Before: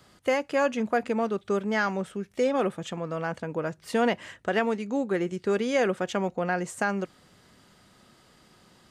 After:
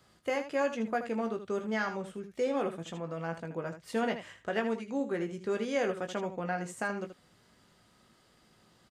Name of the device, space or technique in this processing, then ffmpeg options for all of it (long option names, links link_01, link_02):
slapback doubling: -filter_complex "[0:a]asplit=3[link_01][link_02][link_03];[link_02]adelay=18,volume=-7.5dB[link_04];[link_03]adelay=79,volume=-10dB[link_05];[link_01][link_04][link_05]amix=inputs=3:normalize=0,volume=-7.5dB"